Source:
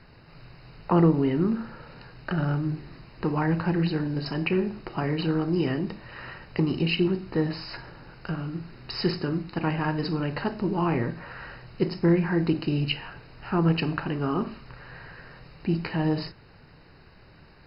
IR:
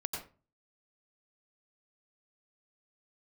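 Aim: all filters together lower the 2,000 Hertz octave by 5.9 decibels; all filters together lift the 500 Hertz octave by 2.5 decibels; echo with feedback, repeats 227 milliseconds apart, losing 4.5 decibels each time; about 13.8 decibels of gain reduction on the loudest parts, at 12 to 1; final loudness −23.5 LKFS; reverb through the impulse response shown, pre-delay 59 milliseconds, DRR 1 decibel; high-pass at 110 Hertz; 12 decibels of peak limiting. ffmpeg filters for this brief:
-filter_complex "[0:a]highpass=110,equalizer=frequency=500:width_type=o:gain=4,equalizer=frequency=2000:width_type=o:gain=-8.5,acompressor=threshold=-29dB:ratio=12,alimiter=level_in=5.5dB:limit=-24dB:level=0:latency=1,volume=-5.5dB,aecho=1:1:227|454|681|908|1135|1362|1589|1816|2043:0.596|0.357|0.214|0.129|0.0772|0.0463|0.0278|0.0167|0.01,asplit=2[link_01][link_02];[1:a]atrim=start_sample=2205,adelay=59[link_03];[link_02][link_03]afir=irnorm=-1:irlink=0,volume=-3dB[link_04];[link_01][link_04]amix=inputs=2:normalize=0,volume=11.5dB"

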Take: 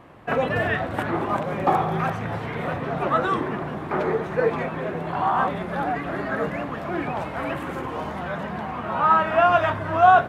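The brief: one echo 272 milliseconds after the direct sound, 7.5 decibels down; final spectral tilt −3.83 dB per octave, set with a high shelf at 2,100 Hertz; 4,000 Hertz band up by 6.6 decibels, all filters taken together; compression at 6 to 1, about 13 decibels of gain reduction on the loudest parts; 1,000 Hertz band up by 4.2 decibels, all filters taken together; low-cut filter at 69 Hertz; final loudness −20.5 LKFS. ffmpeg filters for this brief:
ffmpeg -i in.wav -af "highpass=69,equalizer=frequency=1000:width_type=o:gain=5,highshelf=frequency=2100:gain=3,equalizer=frequency=4000:width_type=o:gain=6,acompressor=threshold=-20dB:ratio=6,aecho=1:1:272:0.422,volume=4dB" out.wav

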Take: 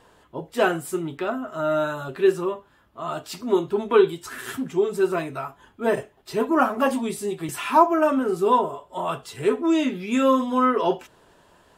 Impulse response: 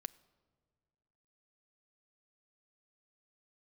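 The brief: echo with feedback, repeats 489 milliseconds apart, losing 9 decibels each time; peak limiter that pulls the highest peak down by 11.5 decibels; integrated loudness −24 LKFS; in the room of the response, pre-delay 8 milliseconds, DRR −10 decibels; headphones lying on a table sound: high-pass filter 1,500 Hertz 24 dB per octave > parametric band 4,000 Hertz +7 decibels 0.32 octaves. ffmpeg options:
-filter_complex "[0:a]alimiter=limit=-15dB:level=0:latency=1,aecho=1:1:489|978|1467|1956:0.355|0.124|0.0435|0.0152,asplit=2[link_01][link_02];[1:a]atrim=start_sample=2205,adelay=8[link_03];[link_02][link_03]afir=irnorm=-1:irlink=0,volume=13.5dB[link_04];[link_01][link_04]amix=inputs=2:normalize=0,highpass=frequency=1500:width=0.5412,highpass=frequency=1500:width=1.3066,equalizer=frequency=4000:width_type=o:width=0.32:gain=7,volume=2dB"

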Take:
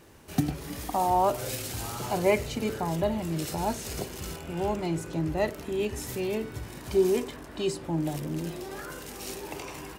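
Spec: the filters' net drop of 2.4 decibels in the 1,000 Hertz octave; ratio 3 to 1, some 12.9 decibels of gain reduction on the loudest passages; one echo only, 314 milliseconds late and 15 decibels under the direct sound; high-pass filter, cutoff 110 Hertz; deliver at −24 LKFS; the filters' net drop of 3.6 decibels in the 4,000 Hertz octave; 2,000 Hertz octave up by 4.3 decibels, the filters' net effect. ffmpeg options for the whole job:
ffmpeg -i in.wav -af "highpass=110,equalizer=frequency=1000:width_type=o:gain=-4.5,equalizer=frequency=2000:width_type=o:gain=8.5,equalizer=frequency=4000:width_type=o:gain=-8.5,acompressor=threshold=-36dB:ratio=3,aecho=1:1:314:0.178,volume=14.5dB" out.wav

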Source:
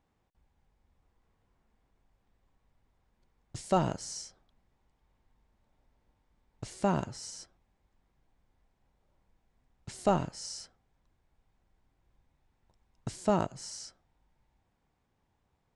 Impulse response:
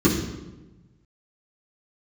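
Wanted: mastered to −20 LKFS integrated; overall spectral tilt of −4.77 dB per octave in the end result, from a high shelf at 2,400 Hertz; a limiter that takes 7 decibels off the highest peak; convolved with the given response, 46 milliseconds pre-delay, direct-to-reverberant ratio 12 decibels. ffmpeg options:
-filter_complex "[0:a]highshelf=frequency=2400:gain=3.5,alimiter=limit=-22.5dB:level=0:latency=1,asplit=2[link_01][link_02];[1:a]atrim=start_sample=2205,adelay=46[link_03];[link_02][link_03]afir=irnorm=-1:irlink=0,volume=-29.5dB[link_04];[link_01][link_04]amix=inputs=2:normalize=0,volume=16dB"

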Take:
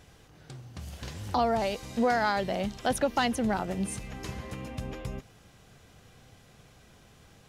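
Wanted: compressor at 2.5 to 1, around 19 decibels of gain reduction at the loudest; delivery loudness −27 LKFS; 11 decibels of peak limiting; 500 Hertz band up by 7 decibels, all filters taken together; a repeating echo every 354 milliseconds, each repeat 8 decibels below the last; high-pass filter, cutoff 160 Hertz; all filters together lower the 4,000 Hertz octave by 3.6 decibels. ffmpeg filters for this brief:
ffmpeg -i in.wav -af "highpass=160,equalizer=frequency=500:width_type=o:gain=8.5,equalizer=frequency=4000:width_type=o:gain=-5,acompressor=threshold=-45dB:ratio=2.5,alimiter=level_in=11dB:limit=-24dB:level=0:latency=1,volume=-11dB,aecho=1:1:354|708|1062|1416|1770:0.398|0.159|0.0637|0.0255|0.0102,volume=19dB" out.wav

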